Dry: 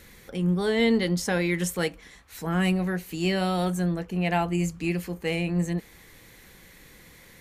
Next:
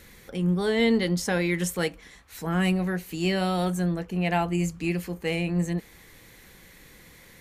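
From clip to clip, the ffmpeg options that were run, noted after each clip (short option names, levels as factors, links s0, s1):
-af anull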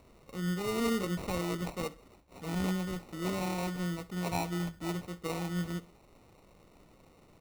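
-af "acrusher=samples=27:mix=1:aa=0.000001,aecho=1:1:64|128|192:0.0944|0.0359|0.0136,volume=0.376"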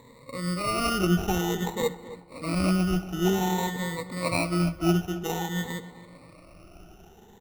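-filter_complex "[0:a]afftfilt=real='re*pow(10,19/40*sin(2*PI*(1*log(max(b,1)*sr/1024/100)/log(2)-(0.52)*(pts-256)/sr)))':imag='im*pow(10,19/40*sin(2*PI*(1*log(max(b,1)*sr/1024/100)/log(2)-(0.52)*(pts-256)/sr)))':win_size=1024:overlap=0.75,asplit=2[s0][s1];[s1]adelay=271,lowpass=f=2100:p=1,volume=0.188,asplit=2[s2][s3];[s3]adelay=271,lowpass=f=2100:p=1,volume=0.42,asplit=2[s4][s5];[s5]adelay=271,lowpass=f=2100:p=1,volume=0.42,asplit=2[s6][s7];[s7]adelay=271,lowpass=f=2100:p=1,volume=0.42[s8];[s0][s2][s4][s6][s8]amix=inputs=5:normalize=0,volume=1.68"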